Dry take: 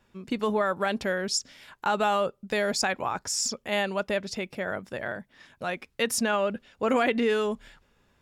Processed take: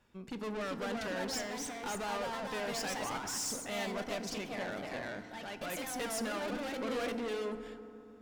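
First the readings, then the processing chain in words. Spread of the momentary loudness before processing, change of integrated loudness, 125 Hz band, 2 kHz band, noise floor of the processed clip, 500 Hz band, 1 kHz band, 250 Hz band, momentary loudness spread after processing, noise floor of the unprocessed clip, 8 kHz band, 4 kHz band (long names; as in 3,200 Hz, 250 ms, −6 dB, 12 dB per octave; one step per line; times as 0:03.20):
10 LU, −9.5 dB, −8.0 dB, −9.5 dB, −53 dBFS, −10.5 dB, −10.0 dB, −8.5 dB, 7 LU, −68 dBFS, −7.5 dB, −8.5 dB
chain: tube saturation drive 33 dB, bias 0.4
delay with pitch and tempo change per echo 428 ms, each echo +2 semitones, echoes 2
feedback delay network reverb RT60 2.8 s, low-frequency decay 1.4×, high-frequency decay 0.35×, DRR 9 dB
level −3.5 dB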